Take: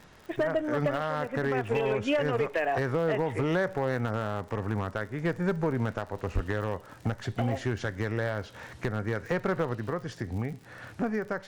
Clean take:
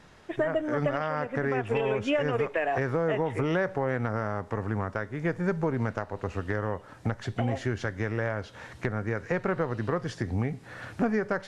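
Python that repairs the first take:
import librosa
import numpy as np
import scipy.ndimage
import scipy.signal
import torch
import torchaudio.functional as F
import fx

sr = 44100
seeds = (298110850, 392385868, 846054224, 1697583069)

y = fx.fix_declip(x, sr, threshold_db=-20.0)
y = fx.fix_declick_ar(y, sr, threshold=6.5)
y = fx.fix_deplosive(y, sr, at_s=(6.34,))
y = fx.fix_level(y, sr, at_s=9.75, step_db=3.5)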